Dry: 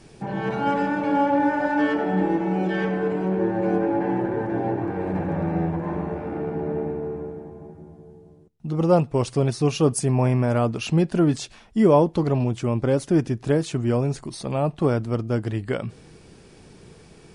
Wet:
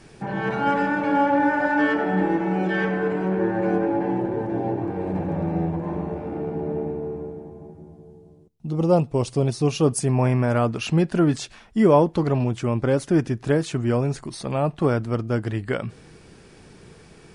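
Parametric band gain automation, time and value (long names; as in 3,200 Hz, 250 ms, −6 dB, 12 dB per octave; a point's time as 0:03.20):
parametric band 1,600 Hz 1.1 octaves
0:03.60 +5 dB
0:04.23 −6 dB
0:09.40 −6 dB
0:10.28 +4 dB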